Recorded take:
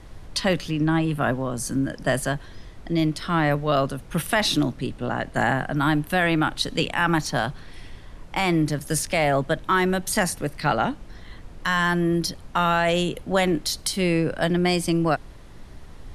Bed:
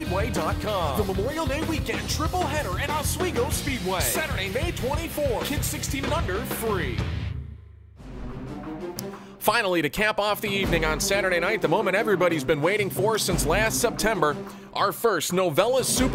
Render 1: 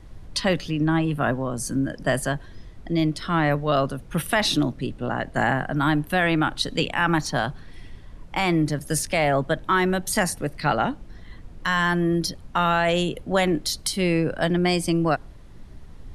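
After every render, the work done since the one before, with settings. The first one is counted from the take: noise reduction 6 dB, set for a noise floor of -43 dBFS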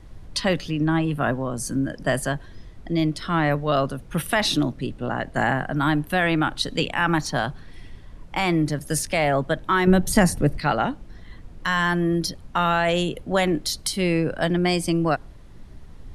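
9.87–10.59 s: bass shelf 430 Hz +11 dB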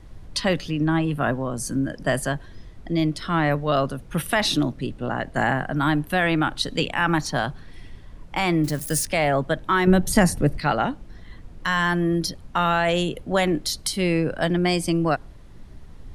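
8.64–9.05 s: zero-crossing glitches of -27.5 dBFS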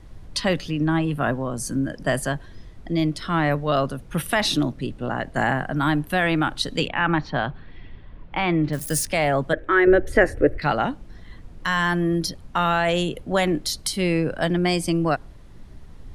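6.88–8.73 s: low-pass 3.5 kHz 24 dB/octave; 9.53–10.62 s: FFT filter 110 Hz 0 dB, 170 Hz -19 dB, 320 Hz +5 dB, 510 Hz +9 dB, 930 Hz -9 dB, 1.7 kHz +7 dB, 4.3 kHz -14 dB, 15 kHz -20 dB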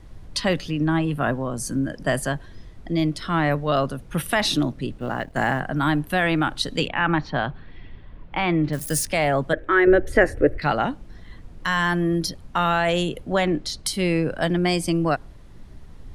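4.98–5.60 s: companding laws mixed up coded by A; 13.34–13.86 s: distance through air 70 m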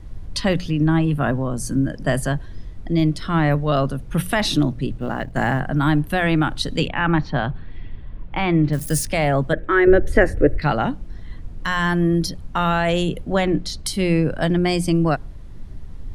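bass shelf 210 Hz +9.5 dB; hum notches 60/120/180 Hz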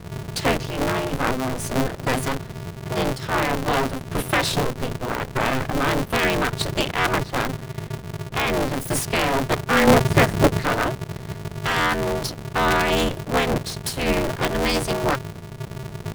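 comb filter that takes the minimum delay 2.1 ms; polarity switched at an audio rate 130 Hz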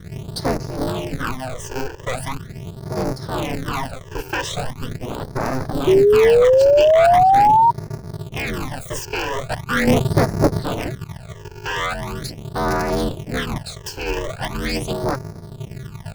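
phase shifter stages 12, 0.41 Hz, lowest notch 200–3100 Hz; 5.87–7.71 s: painted sound rise 370–950 Hz -12 dBFS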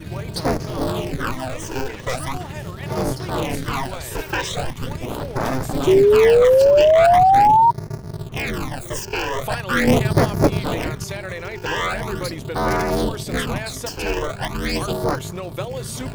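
add bed -8.5 dB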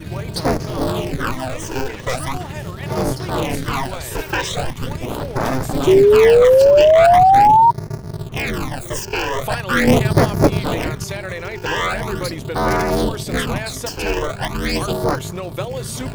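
trim +2.5 dB

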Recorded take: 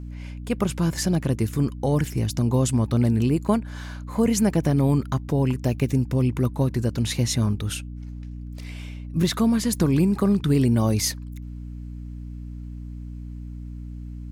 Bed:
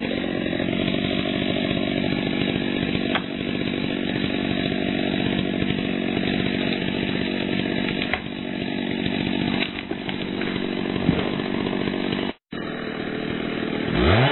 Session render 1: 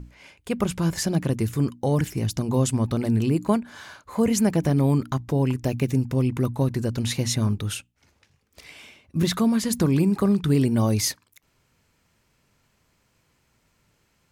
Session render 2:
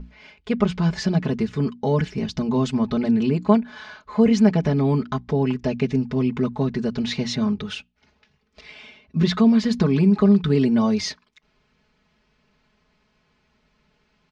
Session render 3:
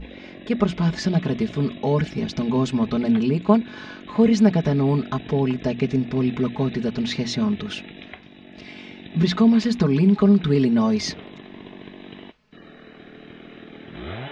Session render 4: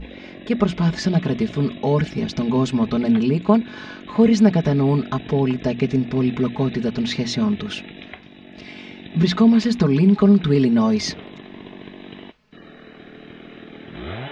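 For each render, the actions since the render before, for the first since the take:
hum notches 60/120/180/240/300 Hz
low-pass 4.9 kHz 24 dB/octave; comb 4.7 ms, depth 88%
add bed -16 dB
trim +2 dB; peak limiter -2 dBFS, peak gain reduction 1.5 dB

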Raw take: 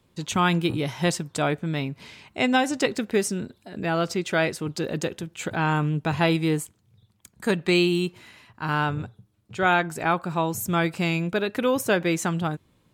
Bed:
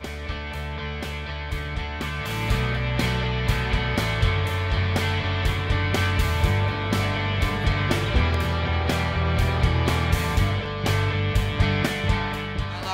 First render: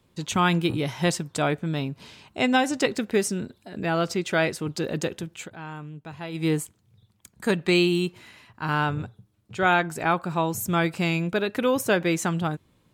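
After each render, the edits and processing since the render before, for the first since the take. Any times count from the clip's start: 1.68–2.42 s: peaking EQ 2.1 kHz -8 dB 0.36 oct; 5.35–6.46 s: dip -14.5 dB, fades 0.14 s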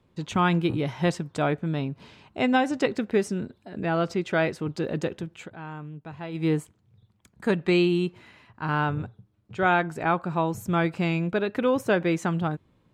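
low-pass 2 kHz 6 dB/octave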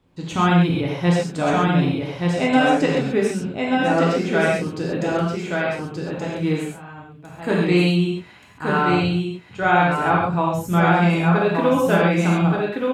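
delay 1177 ms -3.5 dB; gated-style reverb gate 160 ms flat, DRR -4 dB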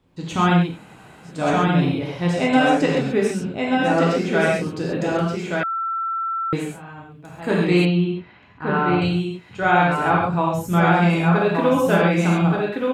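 0.67–1.34 s: room tone, crossfade 0.24 s; 5.63–6.53 s: bleep 1.34 kHz -21.5 dBFS; 7.85–9.02 s: distance through air 270 m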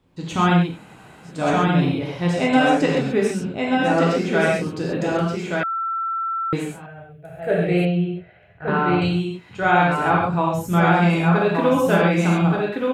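6.86–8.68 s: FFT filter 170 Hz 0 dB, 250 Hz -20 dB, 360 Hz -3 dB, 670 Hz +9 dB, 1 kHz -19 dB, 1.5 kHz -1 dB, 3 kHz -6 dB, 4.9 kHz -15 dB, 7.2 kHz -14 dB, 10 kHz -2 dB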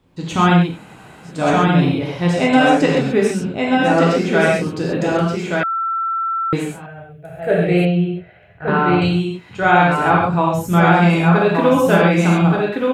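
trim +4 dB; peak limiter -1 dBFS, peak gain reduction 1 dB

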